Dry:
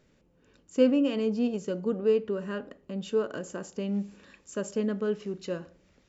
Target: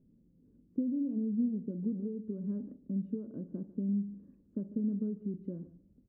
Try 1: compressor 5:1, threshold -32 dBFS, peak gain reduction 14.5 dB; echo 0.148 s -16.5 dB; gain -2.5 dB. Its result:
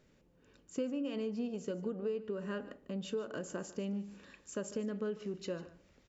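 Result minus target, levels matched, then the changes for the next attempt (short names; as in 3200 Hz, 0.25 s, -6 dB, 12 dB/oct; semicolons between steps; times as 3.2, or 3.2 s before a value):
250 Hz band -3.0 dB
add after compressor: synth low-pass 240 Hz, resonance Q 2.4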